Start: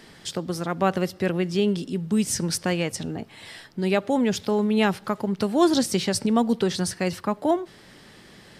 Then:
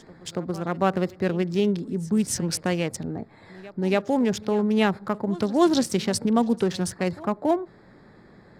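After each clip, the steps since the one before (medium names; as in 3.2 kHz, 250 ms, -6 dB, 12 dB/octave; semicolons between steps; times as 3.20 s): local Wiener filter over 15 samples; reverse echo 281 ms -20 dB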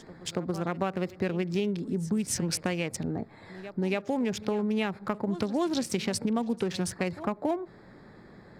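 dynamic bell 2.4 kHz, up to +6 dB, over -49 dBFS, Q 3.1; compression 6:1, threshold -25 dBFS, peak gain reduction 11 dB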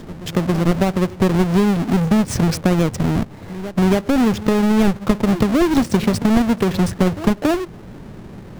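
square wave that keeps the level; tilt EQ -2 dB/octave; trim +6 dB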